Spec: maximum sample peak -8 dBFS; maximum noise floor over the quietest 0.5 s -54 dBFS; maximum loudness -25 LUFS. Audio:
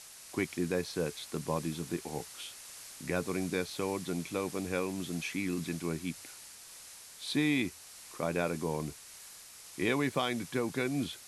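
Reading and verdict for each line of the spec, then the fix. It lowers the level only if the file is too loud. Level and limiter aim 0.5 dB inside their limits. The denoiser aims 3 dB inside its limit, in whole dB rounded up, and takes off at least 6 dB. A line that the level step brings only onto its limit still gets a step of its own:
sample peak -16.5 dBFS: OK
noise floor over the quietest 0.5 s -51 dBFS: fail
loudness -34.5 LUFS: OK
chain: denoiser 6 dB, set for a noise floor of -51 dBFS

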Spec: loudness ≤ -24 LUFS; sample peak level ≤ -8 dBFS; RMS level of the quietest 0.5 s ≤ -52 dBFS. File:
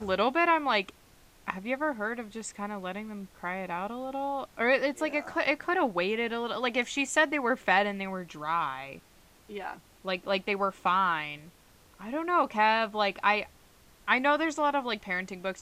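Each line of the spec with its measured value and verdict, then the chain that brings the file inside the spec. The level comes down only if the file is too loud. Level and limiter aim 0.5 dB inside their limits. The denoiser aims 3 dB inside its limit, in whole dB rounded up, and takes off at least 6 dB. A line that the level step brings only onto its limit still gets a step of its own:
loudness -29.0 LUFS: OK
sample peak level -9.5 dBFS: OK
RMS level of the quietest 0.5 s -58 dBFS: OK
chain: none

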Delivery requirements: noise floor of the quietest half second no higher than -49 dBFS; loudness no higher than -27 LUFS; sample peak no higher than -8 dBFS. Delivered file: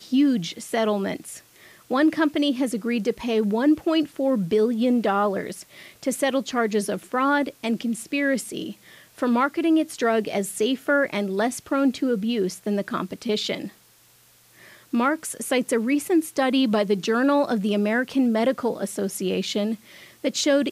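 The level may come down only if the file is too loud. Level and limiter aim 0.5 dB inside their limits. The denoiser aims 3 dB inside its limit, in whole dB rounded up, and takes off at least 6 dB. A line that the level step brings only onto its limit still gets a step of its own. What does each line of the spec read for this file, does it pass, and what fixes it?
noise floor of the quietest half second -56 dBFS: OK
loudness -23.5 LUFS: fail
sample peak -9.5 dBFS: OK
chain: gain -4 dB

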